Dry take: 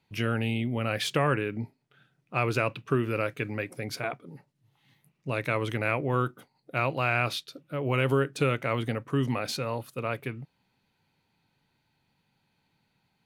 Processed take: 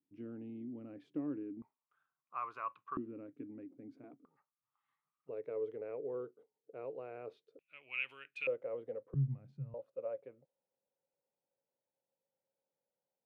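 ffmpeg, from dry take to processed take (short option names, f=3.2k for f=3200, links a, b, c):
-af "asetnsamples=n=441:p=0,asendcmd='1.62 bandpass f 1100;2.97 bandpass f 280;4.25 bandpass f 1200;5.29 bandpass f 450;7.59 bandpass f 2500;8.47 bandpass f 500;9.14 bandpass f 140;9.74 bandpass f 540',bandpass=f=290:t=q:w=11:csg=0"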